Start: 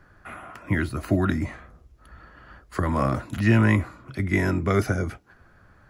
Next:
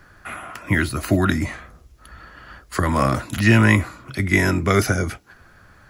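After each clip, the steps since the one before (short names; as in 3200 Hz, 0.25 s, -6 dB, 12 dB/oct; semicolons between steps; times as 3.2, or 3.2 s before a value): high shelf 2100 Hz +10 dB; gain +3.5 dB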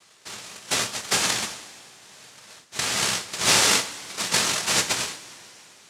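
noise vocoder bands 1; two-slope reverb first 0.24 s, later 3.4 s, from -19 dB, DRR 7 dB; gain -5.5 dB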